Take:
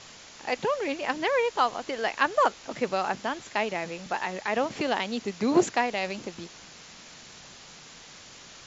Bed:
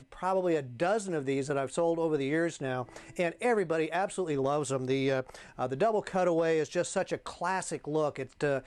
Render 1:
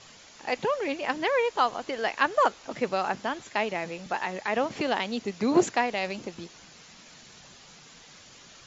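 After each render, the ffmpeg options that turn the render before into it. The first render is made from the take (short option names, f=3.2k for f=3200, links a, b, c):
-af "afftdn=nr=6:nf=-49"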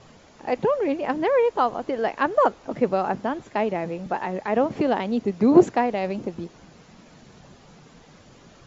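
-af "tiltshelf=f=1.3k:g=9"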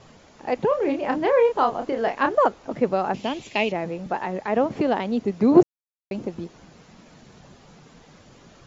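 -filter_complex "[0:a]asettb=1/sr,asplit=3[a][b][c];[a]atrim=end=0.684[d];[b]atrim=start=0.68:end=2.35,asetpts=PTS-STARTPTS,afade=t=in:d=0.004:c=qsin,afade=t=out:st=1.666:d=0.004:c=qsin,asplit=2[e][f];[f]adelay=30,volume=-5.5dB[g];[e][g]amix=inputs=2:normalize=0,atrim=end_sample=73647[h];[c]atrim=start=2.346[i];[d][h]acrossfade=d=0.004:c1=hsin:c2=qsin[j];[j][i]acrossfade=d=0.004:c1=qsin:c2=hsin,asettb=1/sr,asplit=3[k][l][m];[k]atrim=end=3.144[n];[l]atrim=start=3.14:end=3.72,asetpts=PTS-STARTPTS,afade=t=in:d=0.004:c=qsin,afade=t=out:st=0.576:d=0.004:c=qsin,highshelf=f=2k:t=q:w=3:g=8.5[o];[m]atrim=start=3.716[p];[n][o]acrossfade=d=0.004:c1=hsin:c2=qsin[q];[q][p]acrossfade=d=0.004:c1=qsin:c2=hsin,asplit=3[r][s][t];[r]atrim=end=5.63,asetpts=PTS-STARTPTS,afade=t=out:st=5.626:d=0.004:c=hsin[u];[s]atrim=start=5.63:end=6.11,asetpts=PTS-STARTPTS,volume=0[v];[t]atrim=start=6.11,asetpts=PTS-STARTPTS,afade=t=in:d=0.004:c=hsin[w];[u][v][w]concat=n=3:v=0:a=1"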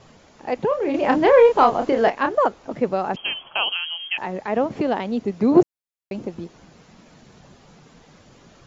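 -filter_complex "[0:a]asettb=1/sr,asplit=3[a][b][c];[a]atrim=end=0.944[d];[b]atrim=start=0.94:end=2.1,asetpts=PTS-STARTPTS,afade=t=in:d=0.004:c=qsin,afade=t=out:st=1.156:d=0.004:c=qsin,acontrast=64[e];[c]atrim=start=2.096[f];[d][e]acrossfade=d=0.004:c1=hsin:c2=qsin[g];[g][f]acrossfade=d=0.004:c1=qsin:c2=hsin,asettb=1/sr,asplit=3[h][i][j];[h]atrim=end=3.164[k];[i]atrim=start=3.16:end=4.18,asetpts=PTS-STARTPTS,afade=t=in:d=0.004:c=qsin,afade=t=out:st=1.016:d=0.004:c=qsin,lowpass=f=2.9k:t=q:w=0.5098,lowpass=f=2.9k:t=q:w=0.6013,lowpass=f=2.9k:t=q:w=0.9,lowpass=f=2.9k:t=q:w=2.563,afreqshift=-3400[l];[j]atrim=start=4.176[m];[k][l]acrossfade=d=0.004:c1=hsin:c2=qsin[n];[n][m]acrossfade=d=0.004:c1=qsin:c2=hsin"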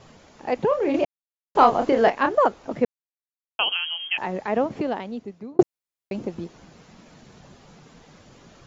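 -filter_complex "[0:a]asplit=6[a][b][c][d][e][f];[a]atrim=end=1.05,asetpts=PTS-STARTPTS,afade=t=out:st=1.046:d=0.004:c=hsin[g];[b]atrim=start=1.05:end=1.55,asetpts=PTS-STARTPTS,volume=0[h];[c]atrim=start=1.55:end=2.85,asetpts=PTS-STARTPTS,afade=t=in:d=0.004:c=hsin,afade=t=out:st=1.296:d=0.004:c=hsin[i];[d]atrim=start=2.85:end=3.59,asetpts=PTS-STARTPTS,volume=0[j];[e]atrim=start=3.59:end=5.59,asetpts=PTS-STARTPTS,afade=t=in:d=0.004:c=hsin,afade=t=out:st=0.83:d=1.17[k];[f]atrim=start=5.59,asetpts=PTS-STARTPTS,afade=t=in:d=0.004:c=hsin[l];[g][h][i][j][k][l]concat=n=6:v=0:a=1"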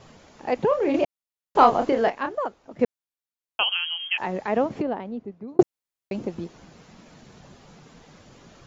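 -filter_complex "[0:a]asettb=1/sr,asplit=3[a][b][c];[a]atrim=end=3.634[d];[b]atrim=start=3.63:end=4.2,asetpts=PTS-STARTPTS,afade=t=in:d=0.004:c=qsin,afade=t=out:st=0.566:d=0.004:c=qsin,highpass=890[e];[c]atrim=start=4.196[f];[d][e]acrossfade=d=0.004:c1=hsin:c2=qsin[g];[g][f]acrossfade=d=0.004:c1=qsin:c2=hsin,asplit=3[h][i][j];[h]afade=t=out:st=4.81:d=0.02[k];[i]lowpass=f=1.1k:p=1,afade=t=in:st=4.81:d=0.02,afade=t=out:st=5.47:d=0.02[l];[j]afade=t=in:st=5.47:d=0.02[m];[k][l][m]amix=inputs=3:normalize=0,asplit=2[n][o];[n]atrim=end=2.79,asetpts=PTS-STARTPTS,afade=t=out:st=1.76:d=1.03:c=qua:silence=0.237137[p];[o]atrim=start=2.79,asetpts=PTS-STARTPTS,afade=t=in:d=0.004:c=hsin:silence=0.237137[q];[p][q]concat=n=2:v=0:a=1"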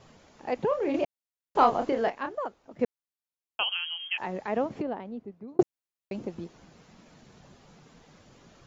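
-af "volume=-5.5dB"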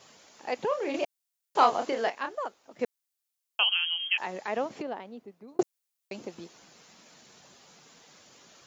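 -af "highpass=f=470:p=1,highshelf=f=3.5k:g=11.5"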